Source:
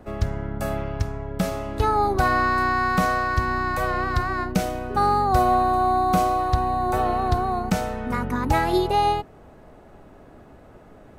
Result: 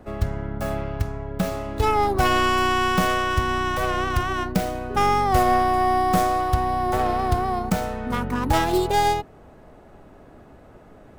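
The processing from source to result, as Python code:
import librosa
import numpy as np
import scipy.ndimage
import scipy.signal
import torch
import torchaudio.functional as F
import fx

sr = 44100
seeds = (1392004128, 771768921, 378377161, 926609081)

y = fx.tracing_dist(x, sr, depth_ms=0.39)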